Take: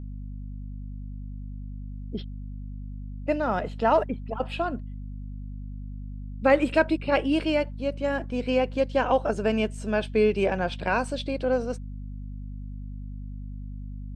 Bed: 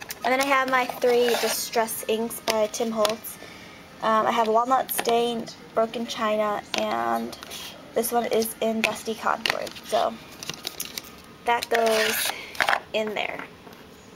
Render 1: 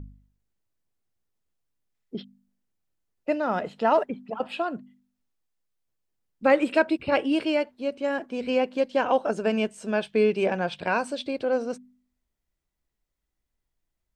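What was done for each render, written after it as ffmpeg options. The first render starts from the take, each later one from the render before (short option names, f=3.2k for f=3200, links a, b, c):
-af "bandreject=f=50:t=h:w=4,bandreject=f=100:t=h:w=4,bandreject=f=150:t=h:w=4,bandreject=f=200:t=h:w=4,bandreject=f=250:t=h:w=4"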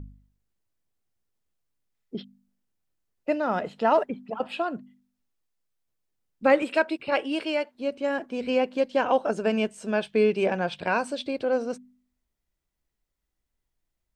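-filter_complex "[0:a]asettb=1/sr,asplit=3[a][b][c];[a]atrim=end=6.624[d];[b]atrim=start=6.62:end=7.75,asetpts=PTS-STARTPTS,afade=t=in:d=0.004:c=qsin,afade=t=out:st=1.126:d=0.004:c=qsin,highpass=f=470:p=1[e];[c]atrim=start=7.746[f];[d][e]acrossfade=d=0.004:c1=hsin:c2=qsin[g];[g][f]acrossfade=d=0.004:c1=qsin:c2=hsin"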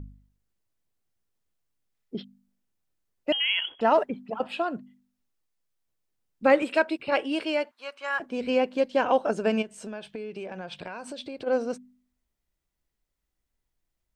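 -filter_complex "[0:a]asettb=1/sr,asplit=3[a][b][c];[a]atrim=end=3.324[d];[b]atrim=start=3.32:end=3.81,asetpts=PTS-STARTPTS,afade=t=in:d=0.004:c=qsin,afade=t=out:st=0.486:d=0.004:c=qsin,lowpass=f=3k:t=q:w=0.5098,lowpass=f=3k:t=q:w=0.6013,lowpass=f=3k:t=q:w=0.9,lowpass=f=3k:t=q:w=2.563,afreqshift=-3500[e];[c]atrim=start=3.806[f];[d][e]acrossfade=d=0.004:c1=hsin:c2=qsin[g];[g][f]acrossfade=d=0.004:c1=qsin:c2=hsin,asettb=1/sr,asplit=3[h][i][j];[h]atrim=end=7.714[k];[i]atrim=start=7.71:end=8.2,asetpts=PTS-STARTPTS,afade=t=in:d=0.004:c=qsin,afade=t=out:st=0.486:d=0.004:c=qsin,highpass=f=1.2k:t=q:w=2.7[l];[j]atrim=start=8.196[m];[k][l]acrossfade=d=0.004:c1=hsin:c2=qsin[n];[n][m]acrossfade=d=0.004:c1=qsin:c2=hsin,asplit=3[o][p][q];[o]afade=t=out:st=9.61:d=0.02[r];[p]acompressor=threshold=-33dB:ratio=10:attack=3.2:release=140:knee=1:detection=peak,afade=t=in:st=9.61:d=0.02,afade=t=out:st=11.46:d=0.02[s];[q]afade=t=in:st=11.46:d=0.02[t];[r][s][t]amix=inputs=3:normalize=0"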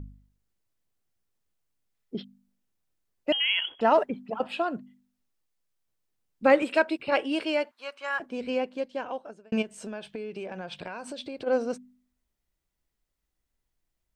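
-filter_complex "[0:a]asplit=2[a][b];[a]atrim=end=9.52,asetpts=PTS-STARTPTS,afade=t=out:st=7.9:d=1.62[c];[b]atrim=start=9.52,asetpts=PTS-STARTPTS,afade=t=in:d=0.004:c=hsin[d];[c][d]concat=n=2:v=0:a=1"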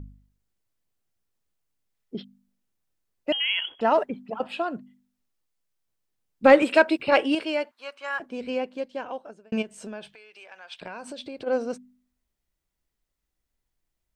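-filter_complex "[0:a]asettb=1/sr,asplit=3[a][b][c];[a]atrim=end=6.444[d];[b]atrim=start=6.44:end=7.35,asetpts=PTS-STARTPTS,afade=t=in:d=0.004:c=qsin,afade=t=out:st=0.906:d=0.004:c=qsin,acontrast=48[e];[c]atrim=start=7.346[f];[d][e]acrossfade=d=0.004:c1=hsin:c2=qsin[g];[g][f]acrossfade=d=0.004:c1=qsin:c2=hsin,asplit=3[h][i][j];[h]afade=t=out:st=10.13:d=0.02[k];[i]highpass=1.2k,afade=t=in:st=10.13:d=0.02,afade=t=out:st=10.81:d=0.02[l];[j]afade=t=in:st=10.81:d=0.02[m];[k][l][m]amix=inputs=3:normalize=0"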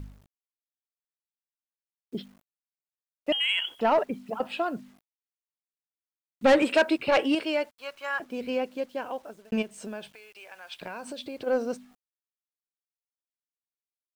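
-af "acrusher=bits=9:mix=0:aa=0.000001,asoftclip=type=tanh:threshold=-13.5dB"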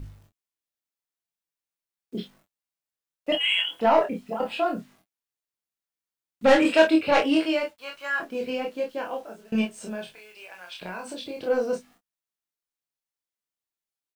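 -filter_complex "[0:a]asplit=2[a][b];[b]adelay=22,volume=-6dB[c];[a][c]amix=inputs=2:normalize=0,aecho=1:1:28|38:0.668|0.282"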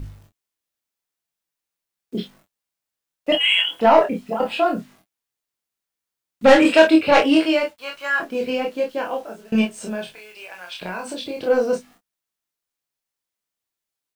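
-af "volume=6dB,alimiter=limit=-2dB:level=0:latency=1"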